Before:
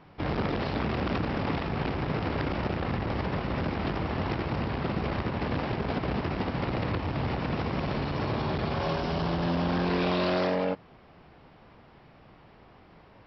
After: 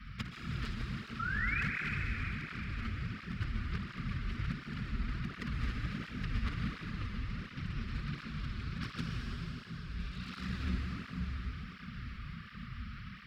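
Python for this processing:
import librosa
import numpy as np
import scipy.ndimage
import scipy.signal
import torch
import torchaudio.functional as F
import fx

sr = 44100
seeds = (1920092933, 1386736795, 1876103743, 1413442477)

p1 = fx.octave_divider(x, sr, octaves=2, level_db=3.0)
p2 = scipy.signal.sosfilt(scipy.signal.cheby1(5, 1.0, [240.0, 1200.0], 'bandstop', fs=sr, output='sos'), p1)
p3 = fx.over_compress(p2, sr, threshold_db=-34.0, ratio=-0.5)
p4 = fx.clip_asym(p3, sr, top_db=-39.5, bottom_db=-23.5)
p5 = fx.spec_paint(p4, sr, seeds[0], shape='rise', start_s=1.19, length_s=0.43, low_hz=1300.0, high_hz=2600.0, level_db=-35.0)
p6 = p5 + fx.room_flutter(p5, sr, wall_m=9.4, rt60_s=0.25, dry=0)
p7 = fx.rev_plate(p6, sr, seeds[1], rt60_s=4.6, hf_ratio=0.95, predelay_ms=110, drr_db=-0.5)
p8 = fx.flanger_cancel(p7, sr, hz=1.4, depth_ms=7.2)
y = p8 * librosa.db_to_amplitude(1.0)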